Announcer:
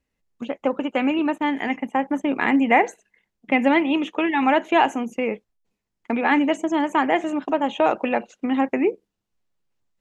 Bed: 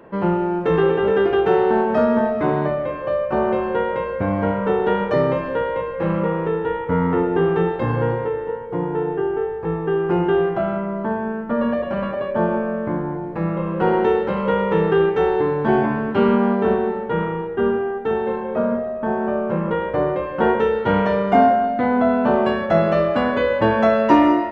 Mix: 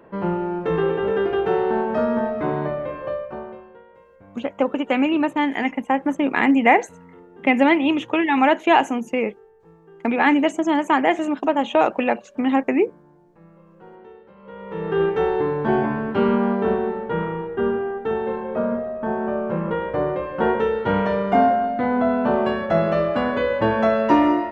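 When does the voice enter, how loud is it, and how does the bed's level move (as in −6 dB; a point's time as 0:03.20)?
3.95 s, +2.0 dB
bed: 0:03.08 −4 dB
0:03.82 −27 dB
0:14.34 −27 dB
0:15.02 −2.5 dB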